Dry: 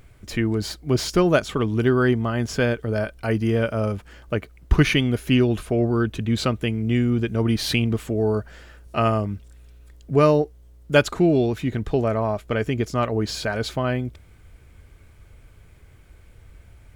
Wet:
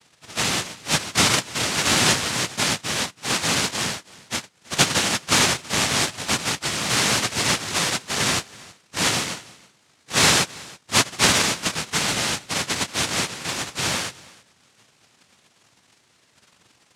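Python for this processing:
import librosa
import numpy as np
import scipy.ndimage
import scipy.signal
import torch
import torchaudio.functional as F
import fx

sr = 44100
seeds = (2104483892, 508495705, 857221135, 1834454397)

y = fx.pitch_bins(x, sr, semitones=-1.5)
y = fx.noise_vocoder(y, sr, seeds[0], bands=1)
y = fx.bass_treble(y, sr, bass_db=8, treble_db=-3)
y = y + 10.0 ** (-22.5 / 20.0) * np.pad(y, (int(325 * sr / 1000.0), 0))[:len(y)]
y = F.gain(torch.from_numpy(y), 1.0).numpy()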